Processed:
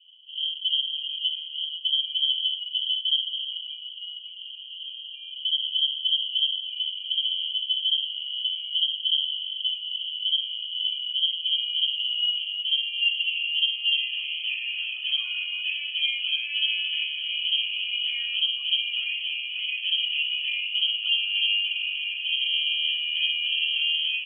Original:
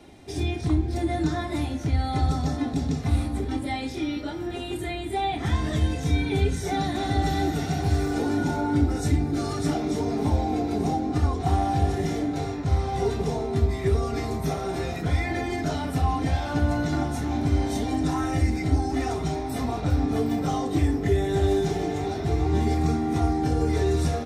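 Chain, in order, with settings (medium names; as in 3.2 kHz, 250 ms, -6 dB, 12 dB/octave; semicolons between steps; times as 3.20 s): dynamic bell 1.9 kHz, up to -3 dB, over -44 dBFS, Q 1.4; low-pass sweep 180 Hz -> 650 Hz, 10.66–14.51 s; frequency inversion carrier 3.2 kHz; trim -5 dB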